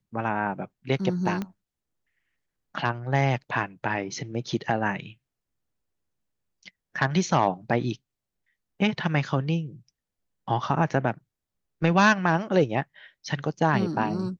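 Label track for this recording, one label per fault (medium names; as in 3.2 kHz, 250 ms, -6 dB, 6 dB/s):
1.420000	1.420000	pop -18 dBFS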